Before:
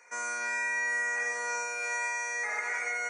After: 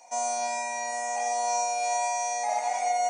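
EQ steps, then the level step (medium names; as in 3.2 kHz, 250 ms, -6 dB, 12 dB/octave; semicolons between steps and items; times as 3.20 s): FFT filter 290 Hz 0 dB, 420 Hz -17 dB, 730 Hz +15 dB, 1.4 kHz -24 dB, 2.1 kHz -16 dB, 3.2 kHz +3 dB, 7.2 kHz 0 dB; +7.0 dB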